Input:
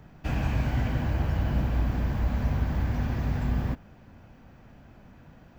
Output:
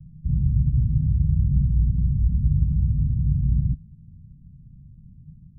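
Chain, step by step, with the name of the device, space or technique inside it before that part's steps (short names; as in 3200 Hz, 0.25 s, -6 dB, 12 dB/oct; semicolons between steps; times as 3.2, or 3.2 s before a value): the neighbour's flat through the wall (LPF 160 Hz 24 dB/oct; bell 160 Hz +7.5 dB 0.45 oct); gain +6 dB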